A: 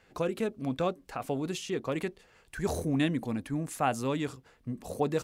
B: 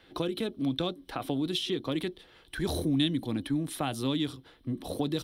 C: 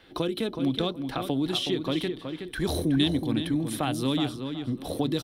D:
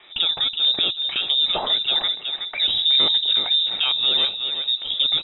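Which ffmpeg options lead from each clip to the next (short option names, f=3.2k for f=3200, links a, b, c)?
-filter_complex "[0:a]superequalizer=6b=2.51:13b=3.16:15b=0.316,acrossover=split=170|3000[a][b][c];[b]acompressor=threshold=-32dB:ratio=6[d];[a][d][c]amix=inputs=3:normalize=0,volume=2.5dB"
-filter_complex "[0:a]asplit=2[a][b];[b]adelay=371,lowpass=f=3.3k:p=1,volume=-7dB,asplit=2[c][d];[d]adelay=371,lowpass=f=3.3k:p=1,volume=0.24,asplit=2[e][f];[f]adelay=371,lowpass=f=3.3k:p=1,volume=0.24[g];[a][c][e][g]amix=inputs=4:normalize=0,volume=3dB"
-af "aeval=exprs='(tanh(7.94*val(0)+0.25)-tanh(0.25))/7.94':c=same,lowpass=f=3.3k:t=q:w=0.5098,lowpass=f=3.3k:t=q:w=0.6013,lowpass=f=3.3k:t=q:w=0.9,lowpass=f=3.3k:t=q:w=2.563,afreqshift=-3900,volume=8dB"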